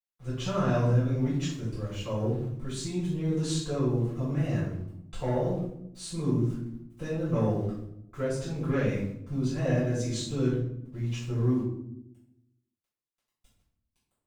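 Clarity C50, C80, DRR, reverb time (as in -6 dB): 2.5 dB, 6.5 dB, -13.5 dB, 0.75 s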